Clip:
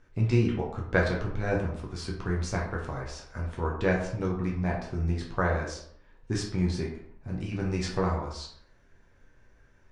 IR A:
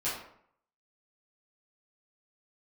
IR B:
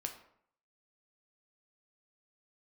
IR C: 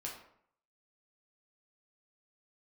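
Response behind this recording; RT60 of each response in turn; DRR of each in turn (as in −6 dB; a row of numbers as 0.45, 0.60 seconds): C; 0.65, 0.65, 0.65 seconds; −11.5, 4.0, −2.5 decibels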